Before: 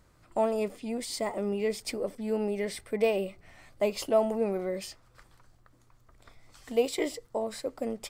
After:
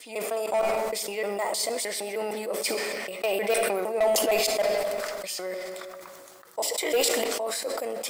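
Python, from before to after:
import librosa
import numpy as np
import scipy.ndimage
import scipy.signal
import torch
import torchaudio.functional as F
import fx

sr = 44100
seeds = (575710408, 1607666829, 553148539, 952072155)

y = fx.block_reorder(x, sr, ms=154.0, group=6)
y = scipy.signal.sosfilt(scipy.signal.butter(2, 600.0, 'highpass', fs=sr, output='sos'), y)
y = fx.high_shelf(y, sr, hz=9400.0, db=10.0)
y = np.clip(y, -10.0 ** (-24.5 / 20.0), 10.0 ** (-24.5 / 20.0))
y = fx.room_shoebox(y, sr, seeds[0], volume_m3=2600.0, walls='mixed', distance_m=0.65)
y = fx.sustainer(y, sr, db_per_s=21.0)
y = y * 10.0 ** (4.5 / 20.0)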